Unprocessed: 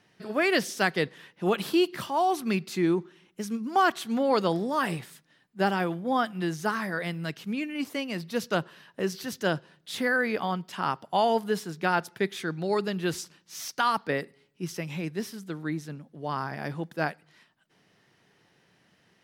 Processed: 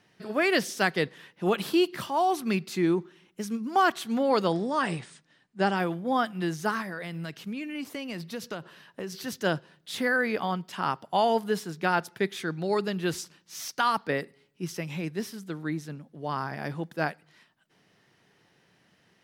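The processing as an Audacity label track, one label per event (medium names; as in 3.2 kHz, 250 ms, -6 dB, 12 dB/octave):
4.490000	5.760000	brick-wall FIR low-pass 9.7 kHz
6.810000	9.140000	compression, threshold -31 dBFS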